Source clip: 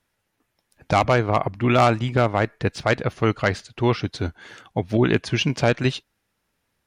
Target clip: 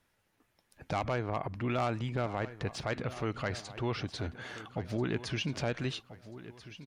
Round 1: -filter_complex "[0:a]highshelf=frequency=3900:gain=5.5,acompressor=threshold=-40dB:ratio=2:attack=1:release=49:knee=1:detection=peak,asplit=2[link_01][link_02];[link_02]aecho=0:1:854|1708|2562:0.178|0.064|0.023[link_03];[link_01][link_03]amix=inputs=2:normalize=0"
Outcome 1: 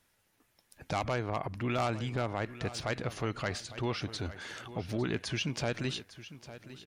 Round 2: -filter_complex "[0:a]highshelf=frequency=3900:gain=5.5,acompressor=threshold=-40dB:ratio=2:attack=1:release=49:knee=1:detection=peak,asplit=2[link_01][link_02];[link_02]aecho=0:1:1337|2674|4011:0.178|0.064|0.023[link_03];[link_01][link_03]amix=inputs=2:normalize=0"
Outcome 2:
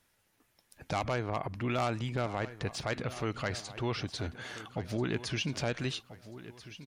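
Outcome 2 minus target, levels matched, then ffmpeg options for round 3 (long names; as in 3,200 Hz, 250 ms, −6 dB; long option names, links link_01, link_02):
8,000 Hz band +4.0 dB
-filter_complex "[0:a]highshelf=frequency=3900:gain=-2.5,acompressor=threshold=-40dB:ratio=2:attack=1:release=49:knee=1:detection=peak,asplit=2[link_01][link_02];[link_02]aecho=0:1:1337|2674|4011:0.178|0.064|0.023[link_03];[link_01][link_03]amix=inputs=2:normalize=0"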